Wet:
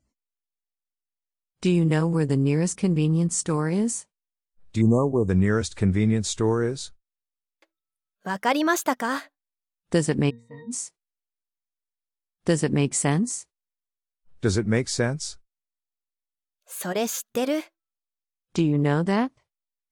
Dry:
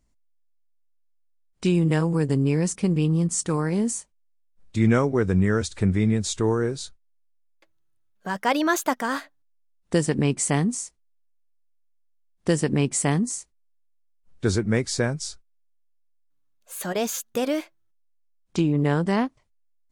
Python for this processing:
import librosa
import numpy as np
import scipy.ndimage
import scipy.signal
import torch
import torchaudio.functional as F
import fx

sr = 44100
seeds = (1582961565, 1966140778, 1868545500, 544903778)

y = fx.octave_resonator(x, sr, note='A#', decay_s=0.37, at=(10.29, 10.7), fade=0.02)
y = fx.noise_reduce_blind(y, sr, reduce_db=25)
y = fx.spec_erase(y, sr, start_s=4.81, length_s=0.48, low_hz=1200.0, high_hz=6100.0)